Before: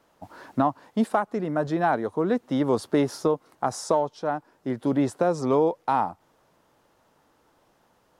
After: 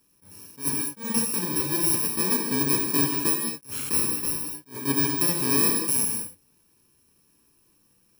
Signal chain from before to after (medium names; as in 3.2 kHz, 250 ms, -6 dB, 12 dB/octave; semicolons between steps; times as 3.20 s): bit-reversed sample order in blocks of 64 samples; gated-style reverb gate 250 ms flat, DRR 2 dB; attacks held to a fixed rise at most 230 dB/s; trim -2 dB